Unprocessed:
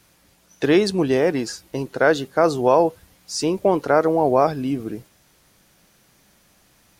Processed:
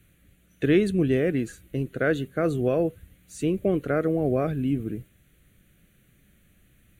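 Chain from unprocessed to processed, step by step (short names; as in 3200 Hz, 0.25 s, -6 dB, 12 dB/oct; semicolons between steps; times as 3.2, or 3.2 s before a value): low shelf 180 Hz +11.5 dB; fixed phaser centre 2200 Hz, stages 4; gain -4.5 dB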